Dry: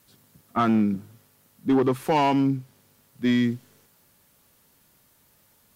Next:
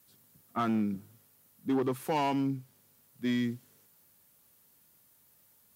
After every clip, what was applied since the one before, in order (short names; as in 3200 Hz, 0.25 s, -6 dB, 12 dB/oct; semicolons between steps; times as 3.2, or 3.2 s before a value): HPF 59 Hz; high shelf 8500 Hz +9.5 dB; gain -8.5 dB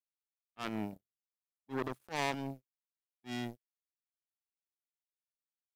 transient shaper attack -7 dB, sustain +4 dB; power-law curve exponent 3; gain +3.5 dB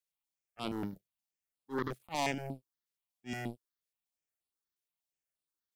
step phaser 8.4 Hz 260–6300 Hz; gain +4 dB